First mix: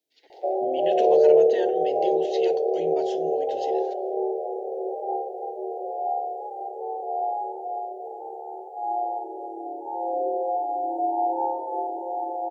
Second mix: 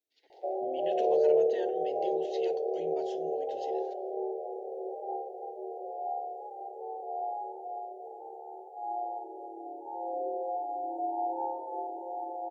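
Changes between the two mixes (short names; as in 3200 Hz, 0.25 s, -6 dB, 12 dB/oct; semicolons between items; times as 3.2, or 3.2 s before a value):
speech -9.0 dB; background -8.0 dB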